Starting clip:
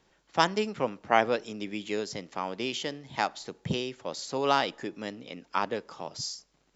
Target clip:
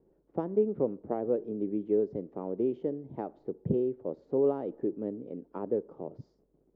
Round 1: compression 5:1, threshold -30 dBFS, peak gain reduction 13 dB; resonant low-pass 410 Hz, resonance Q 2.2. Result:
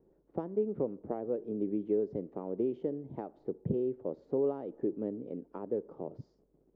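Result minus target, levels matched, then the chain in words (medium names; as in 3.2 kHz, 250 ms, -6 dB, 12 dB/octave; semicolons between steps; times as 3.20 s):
compression: peak gain reduction +5 dB
compression 5:1, threshold -23.5 dBFS, peak gain reduction 8 dB; resonant low-pass 410 Hz, resonance Q 2.2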